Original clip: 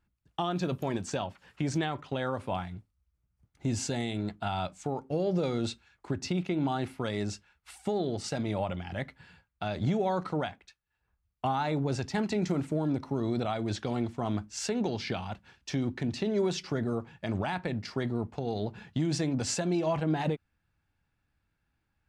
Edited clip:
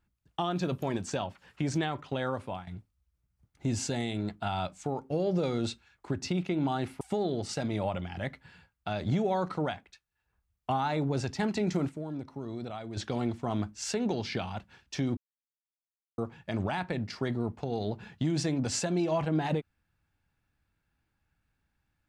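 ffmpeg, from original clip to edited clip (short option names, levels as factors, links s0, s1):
-filter_complex "[0:a]asplit=7[s0][s1][s2][s3][s4][s5][s6];[s0]atrim=end=2.67,asetpts=PTS-STARTPTS,afade=t=out:st=2.33:d=0.34:silence=0.266073[s7];[s1]atrim=start=2.67:end=7.012,asetpts=PTS-STARTPTS,afade=t=in:d=0.004:c=hsin:silence=0.266073[s8];[s2]atrim=start=7.758:end=12.642[s9];[s3]atrim=start=12.638:end=13.722,asetpts=PTS-STARTPTS,volume=0.398[s10];[s4]atrim=start=13.718:end=15.92,asetpts=PTS-STARTPTS,afade=t=out:st=2.198:d=0.004:c=hsin[s11];[s5]atrim=start=15.92:end=16.93,asetpts=PTS-STARTPTS,volume=0[s12];[s6]atrim=start=16.93,asetpts=PTS-STARTPTS,afade=t=in:d=0.004:c=hsin[s13];[s7][s8]concat=n=2:v=0:a=1[s14];[s14][s9]acrossfade=d=0.004:c1=hsin:c2=hsin[s15];[s15][s10]acrossfade=d=0.004:c1=hsin:c2=hsin[s16];[s11][s12][s13]concat=n=3:v=0:a=1[s17];[s16][s17]acrossfade=d=0.004:c1=hsin:c2=hsin"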